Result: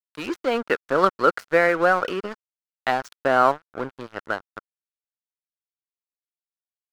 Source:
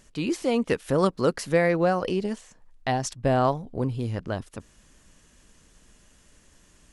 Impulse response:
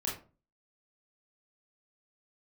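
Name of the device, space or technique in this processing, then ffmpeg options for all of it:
pocket radio on a weak battery: -af "highpass=360,lowpass=4000,aeval=exprs='sgn(val(0))*max(abs(val(0))-0.0126,0)':channel_layout=same,equalizer=frequency=1400:width_type=o:width=0.45:gain=11.5,volume=4.5dB"

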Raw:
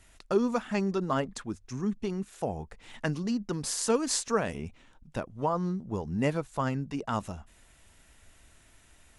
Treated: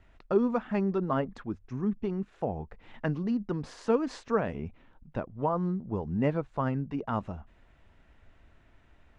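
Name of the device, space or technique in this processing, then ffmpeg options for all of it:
phone in a pocket: -af "lowpass=3500,highshelf=frequency=2500:gain=-12,volume=1dB"

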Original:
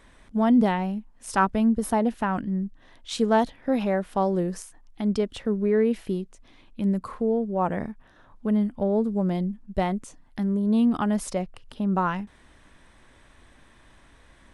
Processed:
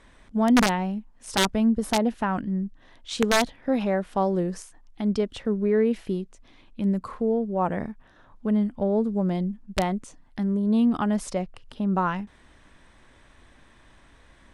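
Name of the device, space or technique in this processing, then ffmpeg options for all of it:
overflowing digital effects unit: -af "aeval=exprs='(mod(4.22*val(0)+1,2)-1)/4.22':channel_layout=same,lowpass=9400"

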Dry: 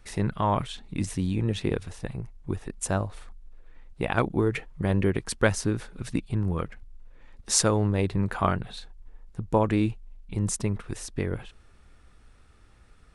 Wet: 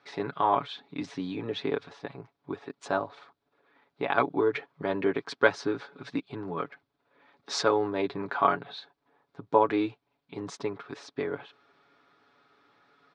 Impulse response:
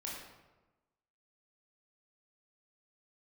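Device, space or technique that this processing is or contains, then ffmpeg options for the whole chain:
phone earpiece: -af "highpass=79,highpass=370,equalizer=frequency=540:width_type=q:width=4:gain=-4,equalizer=frequency=1900:width_type=q:width=4:gain=-5,equalizer=frequency=2800:width_type=q:width=4:gain=-8,lowpass=frequency=4100:width=0.5412,lowpass=frequency=4100:width=1.3066,aecho=1:1:7.1:0.64,volume=2dB"

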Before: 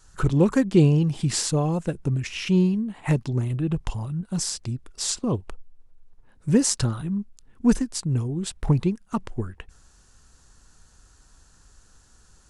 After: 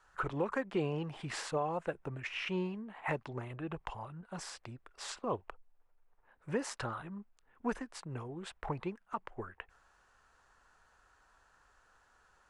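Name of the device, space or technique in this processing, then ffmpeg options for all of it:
DJ mixer with the lows and highs turned down: -filter_complex "[0:a]acrossover=split=520 2500:gain=0.1 1 0.0891[link_01][link_02][link_03];[link_01][link_02][link_03]amix=inputs=3:normalize=0,alimiter=limit=-23.5dB:level=0:latency=1:release=226"

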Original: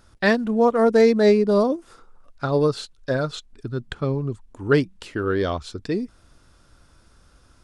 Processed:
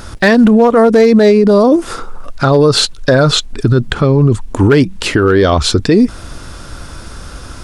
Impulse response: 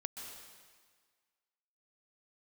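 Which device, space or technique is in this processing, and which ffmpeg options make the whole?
loud club master: -af "acompressor=threshold=-21dB:ratio=2.5,asoftclip=type=hard:threshold=-15.5dB,alimiter=level_in=26.5dB:limit=-1dB:release=50:level=0:latency=1,volume=-1dB"

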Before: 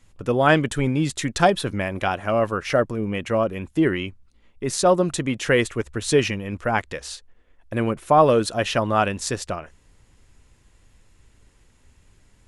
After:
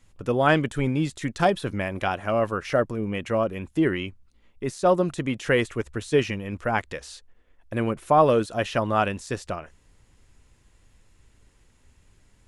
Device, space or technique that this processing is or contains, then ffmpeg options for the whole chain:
de-esser from a sidechain: -filter_complex "[0:a]asplit=2[link_01][link_02];[link_02]highpass=frequency=5000:width=0.5412,highpass=frequency=5000:width=1.3066,apad=whole_len=550161[link_03];[link_01][link_03]sidechaincompress=threshold=-39dB:ratio=4:attack=1.7:release=23,volume=-2.5dB"

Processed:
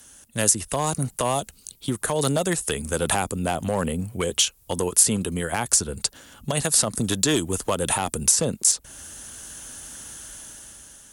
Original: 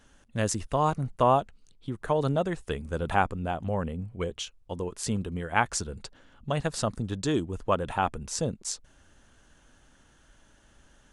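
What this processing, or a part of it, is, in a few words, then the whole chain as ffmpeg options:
FM broadcast chain: -filter_complex "[0:a]highpass=47,dynaudnorm=framelen=360:gausssize=5:maxgain=10dB,acrossover=split=160|660|3200[link_01][link_02][link_03][link_04];[link_01]acompressor=threshold=-36dB:ratio=4[link_05];[link_02]acompressor=threshold=-24dB:ratio=4[link_06];[link_03]acompressor=threshold=-28dB:ratio=4[link_07];[link_04]acompressor=threshold=-36dB:ratio=4[link_08];[link_05][link_06][link_07][link_08]amix=inputs=4:normalize=0,aemphasis=mode=production:type=50fm,alimiter=limit=-15.5dB:level=0:latency=1:release=100,asoftclip=type=hard:threshold=-18.5dB,lowpass=frequency=15000:width=0.5412,lowpass=frequency=15000:width=1.3066,aemphasis=mode=production:type=50fm,volume=3.5dB"

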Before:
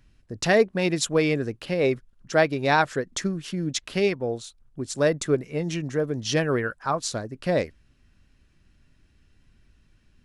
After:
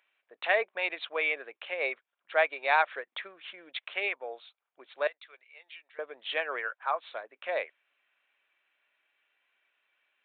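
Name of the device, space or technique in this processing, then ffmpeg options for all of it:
musical greeting card: -filter_complex "[0:a]aresample=8000,aresample=44100,highpass=frequency=610:width=0.5412,highpass=frequency=610:width=1.3066,equalizer=frequency=2300:width_type=o:width=0.23:gain=7,asettb=1/sr,asplit=3[link_01][link_02][link_03];[link_01]atrim=end=5.074[link_04];[link_02]atrim=start=5.07:end=5.99,asetpts=PTS-STARTPTS,afade=type=in:duration=0.004:curve=qsin,afade=type=out:start_time=0.916:duration=0.004:curve=qsin,aderivative[link_05];[link_03]atrim=start=5.986[link_06];[link_04][link_05]acrossfade=duration=0.004:curve1=hsin:curve2=qsin[link_07];[link_07][link_06]acrossfade=duration=0.004:curve1=qsin:curve2=hsin,volume=-3.5dB"

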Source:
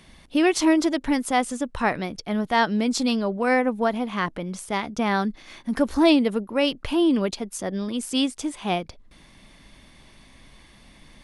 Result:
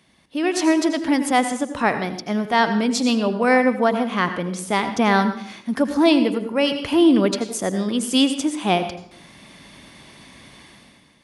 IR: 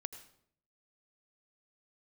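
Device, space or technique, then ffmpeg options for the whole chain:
far laptop microphone: -filter_complex "[1:a]atrim=start_sample=2205[link_01];[0:a][link_01]afir=irnorm=-1:irlink=0,highpass=110,dynaudnorm=framelen=120:gausssize=9:maxgain=14dB,asettb=1/sr,asplit=3[link_02][link_03][link_04];[link_02]atrim=end=6.184[link_05];[link_03]atrim=start=6.18:end=6.98,asetpts=PTS-STARTPTS,afade=type=in:duration=0.004:curve=qsin,afade=type=out:start_time=0.796:duration=0.004:curve=qsin,bandreject=frequency=3700:width=11[link_06];[link_04]atrim=start=6.976[link_07];[link_05][link_06]acrossfade=duration=0.004:curve1=hsin:curve2=qsin[link_08];[link_08][link_07]acrossfade=duration=0.004:curve1=qsin:curve2=hsin,volume=-3.5dB"

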